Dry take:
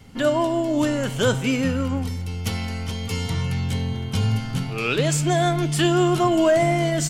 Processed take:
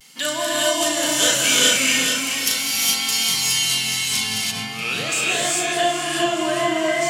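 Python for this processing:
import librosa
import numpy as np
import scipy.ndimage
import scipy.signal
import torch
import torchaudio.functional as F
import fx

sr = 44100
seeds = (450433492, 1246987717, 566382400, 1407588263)

y = scipy.signal.sosfilt(scipy.signal.butter(4, 140.0, 'highpass', fs=sr, output='sos'), x)
y = fx.tilt_shelf(y, sr, db=-9.5, hz=930.0)
y = fx.notch(y, sr, hz=1400.0, q=23.0)
y = fx.doubler(y, sr, ms=37.0, db=-4)
y = fx.echo_feedback(y, sr, ms=424, feedback_pct=41, wet_db=-7)
y = fx.rev_gated(y, sr, seeds[0], gate_ms=440, shape='rising', drr_db=-4.0)
y = fx.vibrato(y, sr, rate_hz=0.43, depth_cents=28.0)
y = fx.high_shelf(y, sr, hz=2800.0, db=fx.steps((0.0, 10.5), (4.5, -3.0), (5.71, -8.0)))
y = y * librosa.db_to_amplitude(-6.5)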